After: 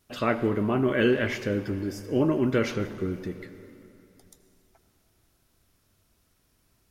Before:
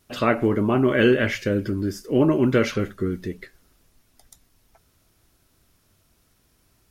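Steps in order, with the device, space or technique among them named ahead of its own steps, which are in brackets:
saturated reverb return (on a send at −10 dB: convolution reverb RT60 2.8 s, pre-delay 74 ms + soft clipping −19 dBFS, distortion −10 dB)
on the sum: level −5 dB

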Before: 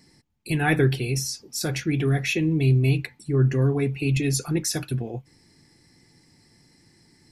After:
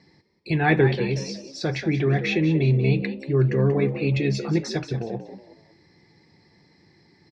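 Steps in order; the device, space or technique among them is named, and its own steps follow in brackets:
frequency-shifting delay pedal into a guitar cabinet (echo with shifted repeats 185 ms, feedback 33%, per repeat +68 Hz, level −11.5 dB; loudspeaker in its box 87–4,200 Hz, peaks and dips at 120 Hz −6 dB, 250 Hz −9 dB, 1,400 Hz −6 dB, 2,900 Hz −9 dB)
level +4 dB

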